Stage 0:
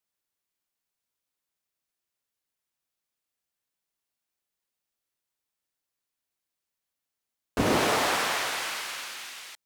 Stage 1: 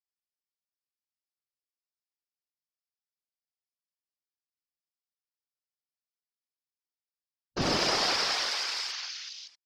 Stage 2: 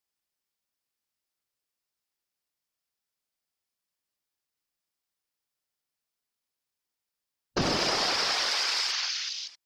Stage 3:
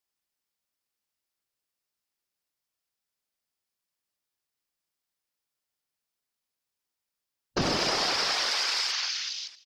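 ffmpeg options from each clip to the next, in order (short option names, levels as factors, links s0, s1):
-af "lowpass=f=5100:t=q:w=6.1,afwtdn=0.0158,afftfilt=real='hypot(re,im)*cos(2*PI*random(0))':imag='hypot(re,im)*sin(2*PI*random(1))':win_size=512:overlap=0.75,volume=1.12"
-af "acompressor=threshold=0.0251:ratio=6,volume=2.51"
-af "aecho=1:1:263:0.0841"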